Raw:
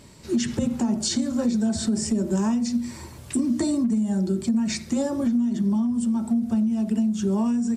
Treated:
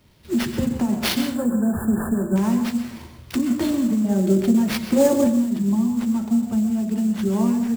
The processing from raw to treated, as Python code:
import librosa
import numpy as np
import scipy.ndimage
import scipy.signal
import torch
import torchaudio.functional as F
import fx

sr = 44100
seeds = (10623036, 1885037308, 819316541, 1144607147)

y = fx.peak_eq(x, sr, hz=510.0, db=8.5, octaves=1.3, at=(4.04, 5.27))
y = fx.sample_hold(y, sr, seeds[0], rate_hz=7700.0, jitter_pct=20)
y = fx.brickwall_bandstop(y, sr, low_hz=1800.0, high_hz=7000.0, at=(1.3, 2.36))
y = fx.rev_plate(y, sr, seeds[1], rt60_s=0.53, hf_ratio=0.7, predelay_ms=115, drr_db=8.0)
y = fx.band_widen(y, sr, depth_pct=40)
y = y * 10.0 ** (2.0 / 20.0)